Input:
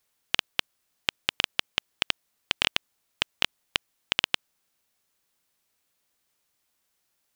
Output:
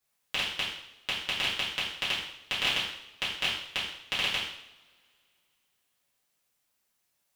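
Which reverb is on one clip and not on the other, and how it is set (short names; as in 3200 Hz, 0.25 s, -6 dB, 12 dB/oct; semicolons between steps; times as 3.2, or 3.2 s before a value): two-slope reverb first 0.7 s, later 2.6 s, from -26 dB, DRR -10 dB; gain -11.5 dB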